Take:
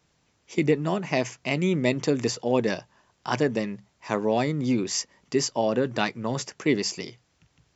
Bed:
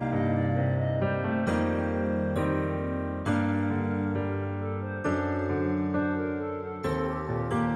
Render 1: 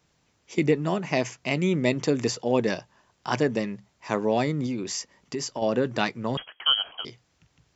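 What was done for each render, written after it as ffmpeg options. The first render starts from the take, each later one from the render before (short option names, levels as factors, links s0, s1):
-filter_complex "[0:a]asettb=1/sr,asplit=3[s0][s1][s2];[s0]atrim=end=4.664[s3];[s1]atrim=start=4.66:end=5.62,asetpts=PTS-STARTPTS,afade=t=in:d=0.004:c=qsin,afade=t=out:st=0.956:d=0.004:c=qsin,acompressor=threshold=0.0398:ratio=3:attack=3.2:release=140:knee=1:detection=peak[s4];[s2]atrim=start=5.616[s5];[s3][s4]acrossfade=d=0.004:c1=hsin:c2=qsin[s6];[s6][s5]acrossfade=d=0.004:c1=qsin:c2=hsin,asettb=1/sr,asplit=3[s7][s8][s9];[s7]atrim=end=6.374[s10];[s8]atrim=start=6.37:end=7.05,asetpts=PTS-STARTPTS,afade=t=in:d=0.004:c=qsin,afade=t=out:st=0.676:d=0.004:c=qsin,lowpass=f=2900:t=q:w=0.5098,lowpass=f=2900:t=q:w=0.6013,lowpass=f=2900:t=q:w=0.9,lowpass=f=2900:t=q:w=2.563,afreqshift=-3400[s11];[s9]atrim=start=7.046[s12];[s10][s11]acrossfade=d=0.004:c1=hsin:c2=qsin[s13];[s13][s12]acrossfade=d=0.004:c1=qsin:c2=hsin"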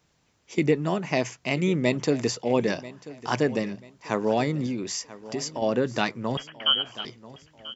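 -af "aecho=1:1:988|1976|2964:0.133|0.0467|0.0163"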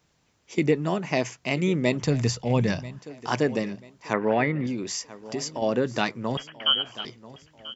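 -filter_complex "[0:a]asplit=3[s0][s1][s2];[s0]afade=t=out:st=2.02:d=0.02[s3];[s1]asubboost=boost=11.5:cutoff=120,afade=t=in:st=2.02:d=0.02,afade=t=out:st=2.98:d=0.02[s4];[s2]afade=t=in:st=2.98:d=0.02[s5];[s3][s4][s5]amix=inputs=3:normalize=0,asettb=1/sr,asplit=3[s6][s7][s8];[s6]atrim=end=4.134[s9];[s7]atrim=start=4.13:end=4.67,asetpts=PTS-STARTPTS,afade=t=in:d=0.004:c=qsin,afade=t=out:st=0.536:d=0.004:c=qsin,lowpass=f=2000:t=q:w=2.8[s10];[s8]atrim=start=4.666[s11];[s9][s10]acrossfade=d=0.004:c1=hsin:c2=qsin[s12];[s12][s11]acrossfade=d=0.004:c1=qsin:c2=hsin"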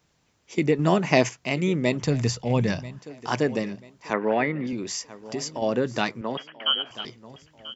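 -filter_complex "[0:a]asettb=1/sr,asplit=3[s0][s1][s2];[s0]atrim=end=4.104[s3];[s1]atrim=start=4.1:end=4.73,asetpts=PTS-STARTPTS,afade=t=in:d=0.004:c=qsin,afade=t=out:st=0.626:d=0.004:c=qsin,highpass=170,lowpass=5900[s4];[s2]atrim=start=4.726[s5];[s3][s4]acrossfade=d=0.004:c1=hsin:c2=qsin[s6];[s6][s5]acrossfade=d=0.004:c1=qsin:c2=hsin,asettb=1/sr,asplit=3[s7][s8][s9];[s7]atrim=end=6.214[s10];[s8]atrim=start=6.21:end=6.91,asetpts=PTS-STARTPTS,afade=t=in:d=0.004:c=qsin,afade=t=out:st=0.696:d=0.004:c=qsin,highpass=230,lowpass=3800[s11];[s9]atrim=start=6.906[s12];[s10][s11]acrossfade=d=0.004:c1=hsin:c2=qsin[s13];[s13][s12]acrossfade=d=0.004:c1=qsin:c2=hsin,asplit=3[s14][s15][s16];[s14]atrim=end=0.792[s17];[s15]atrim=start=0.788:end=1.292,asetpts=PTS-STARTPTS,volume=2[s18];[s16]atrim=start=1.288[s19];[s17][s18]acrossfade=d=0.004:c1=hsin:c2=hsin[s20];[s20][s19]acrossfade=d=0.004:c1=hsin:c2=hsin"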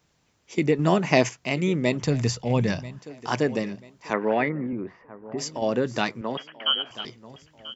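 -filter_complex "[0:a]asplit=3[s0][s1][s2];[s0]afade=t=out:st=4.48:d=0.02[s3];[s1]lowpass=f=1700:w=0.5412,lowpass=f=1700:w=1.3066,afade=t=in:st=4.48:d=0.02,afade=t=out:st=5.37:d=0.02[s4];[s2]afade=t=in:st=5.37:d=0.02[s5];[s3][s4][s5]amix=inputs=3:normalize=0"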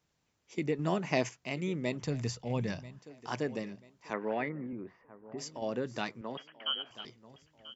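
-af "volume=0.299"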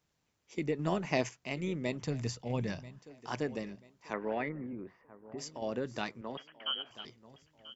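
-af "tremolo=f=150:d=0.261"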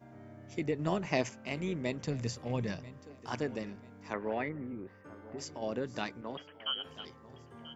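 -filter_complex "[1:a]volume=0.0562[s0];[0:a][s0]amix=inputs=2:normalize=0"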